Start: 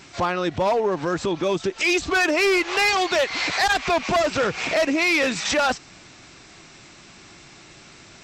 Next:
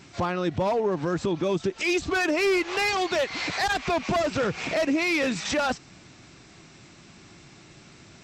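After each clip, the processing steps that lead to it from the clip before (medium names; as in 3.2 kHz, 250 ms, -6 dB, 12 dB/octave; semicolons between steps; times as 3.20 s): peaking EQ 140 Hz +7.5 dB 2.8 oct; trim -6 dB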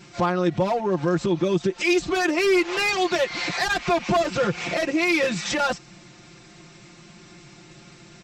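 comb 5.7 ms, depth 86%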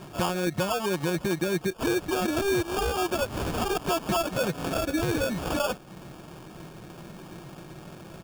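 low-pass 6 kHz 12 dB/octave; compression 2:1, threshold -35 dBFS, peak gain reduction 10.5 dB; sample-rate reducer 2 kHz, jitter 0%; trim +4 dB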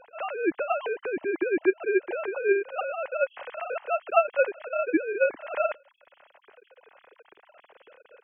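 formants replaced by sine waves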